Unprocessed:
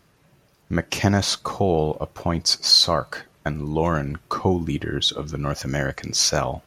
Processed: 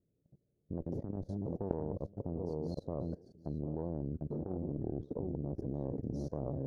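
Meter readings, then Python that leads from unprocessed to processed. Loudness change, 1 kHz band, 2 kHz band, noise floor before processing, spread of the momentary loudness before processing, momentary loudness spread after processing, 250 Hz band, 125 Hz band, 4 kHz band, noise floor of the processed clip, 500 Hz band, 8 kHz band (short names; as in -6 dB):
-18.0 dB, -24.5 dB, under -40 dB, -60 dBFS, 13 LU, 3 LU, -12.0 dB, -12.5 dB, under -40 dB, -80 dBFS, -15.0 dB, under -40 dB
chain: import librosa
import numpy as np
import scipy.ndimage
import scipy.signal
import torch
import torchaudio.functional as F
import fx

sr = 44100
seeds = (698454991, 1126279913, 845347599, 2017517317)

y = fx.reverse_delay(x, sr, ms=417, wet_db=-13.0)
y = scipy.signal.sosfilt(scipy.signal.cheby2(4, 40, 1000.0, 'lowpass', fs=sr, output='sos'), y)
y = y + 10.0 ** (-10.0 / 20.0) * np.pad(y, (int(750 * sr / 1000.0), 0))[:len(y)]
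y = fx.cheby_harmonics(y, sr, harmonics=(2, 3, 4, 6), levels_db=(-28, -16, -39, -20), full_scale_db=-3.0)
y = fx.level_steps(y, sr, step_db=21)
y = fx.low_shelf(y, sr, hz=69.0, db=-4.0)
y = fx.over_compress(y, sr, threshold_db=-30.0, ratio=-0.5)
y = y * librosa.db_to_amplitude(1.5)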